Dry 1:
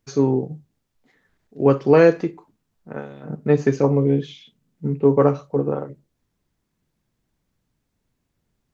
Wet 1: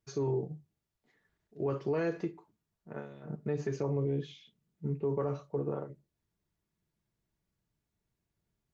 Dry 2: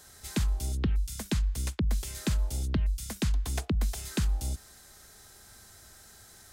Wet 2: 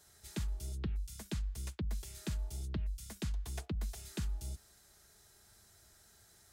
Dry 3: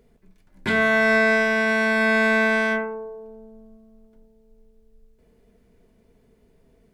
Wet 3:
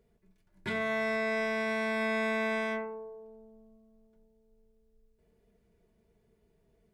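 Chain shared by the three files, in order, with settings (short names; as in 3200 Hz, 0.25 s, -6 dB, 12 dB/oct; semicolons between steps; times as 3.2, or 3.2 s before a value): notch comb 260 Hz; limiter -15 dBFS; gain -9 dB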